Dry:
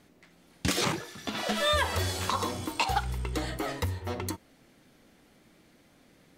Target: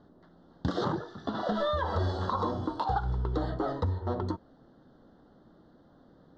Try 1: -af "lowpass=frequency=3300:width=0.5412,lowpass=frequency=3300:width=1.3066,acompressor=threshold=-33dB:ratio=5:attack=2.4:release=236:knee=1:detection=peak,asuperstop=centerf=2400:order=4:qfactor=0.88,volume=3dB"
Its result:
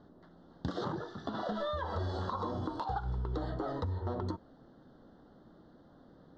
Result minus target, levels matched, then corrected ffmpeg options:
downward compressor: peak gain reduction +6.5 dB
-af "lowpass=frequency=3300:width=0.5412,lowpass=frequency=3300:width=1.3066,acompressor=threshold=-25dB:ratio=5:attack=2.4:release=236:knee=1:detection=peak,asuperstop=centerf=2400:order=4:qfactor=0.88,volume=3dB"

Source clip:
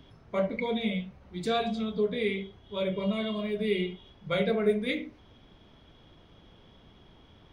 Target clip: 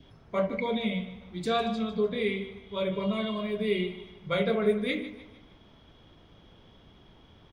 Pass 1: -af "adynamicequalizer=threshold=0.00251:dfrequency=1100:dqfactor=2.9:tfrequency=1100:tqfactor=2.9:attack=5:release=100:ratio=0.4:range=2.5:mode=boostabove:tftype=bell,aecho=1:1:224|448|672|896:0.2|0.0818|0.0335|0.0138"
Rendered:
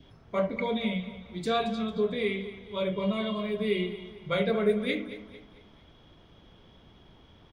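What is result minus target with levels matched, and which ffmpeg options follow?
echo 72 ms late
-af "adynamicequalizer=threshold=0.00251:dfrequency=1100:dqfactor=2.9:tfrequency=1100:tqfactor=2.9:attack=5:release=100:ratio=0.4:range=2.5:mode=boostabove:tftype=bell,aecho=1:1:152|304|456|608:0.2|0.0818|0.0335|0.0138"

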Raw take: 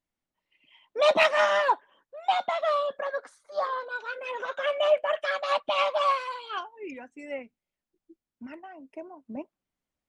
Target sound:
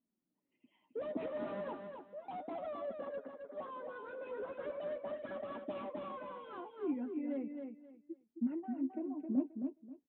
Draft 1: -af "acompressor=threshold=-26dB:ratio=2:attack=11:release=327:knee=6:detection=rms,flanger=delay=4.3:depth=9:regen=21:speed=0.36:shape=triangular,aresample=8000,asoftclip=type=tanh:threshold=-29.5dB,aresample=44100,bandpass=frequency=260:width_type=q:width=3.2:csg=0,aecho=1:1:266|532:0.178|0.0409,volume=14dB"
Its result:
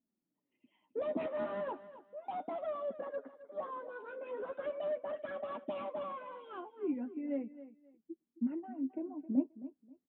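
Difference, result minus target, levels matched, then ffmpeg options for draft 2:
echo-to-direct −9 dB; soft clipping: distortion −5 dB
-af "acompressor=threshold=-26dB:ratio=2:attack=11:release=327:knee=6:detection=rms,flanger=delay=4.3:depth=9:regen=21:speed=0.36:shape=triangular,aresample=8000,asoftclip=type=tanh:threshold=-36.5dB,aresample=44100,bandpass=frequency=260:width_type=q:width=3.2:csg=0,aecho=1:1:266|532|798:0.501|0.115|0.0265,volume=14dB"

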